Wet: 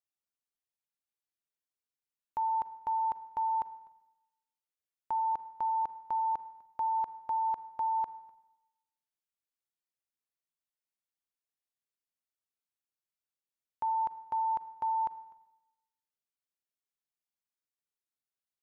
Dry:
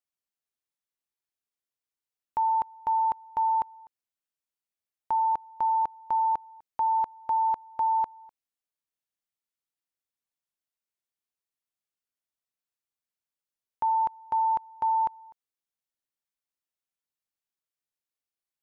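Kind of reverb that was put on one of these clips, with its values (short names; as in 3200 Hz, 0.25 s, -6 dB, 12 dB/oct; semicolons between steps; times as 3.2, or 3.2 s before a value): Schroeder reverb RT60 0.96 s, combs from 33 ms, DRR 14.5 dB; gain -6 dB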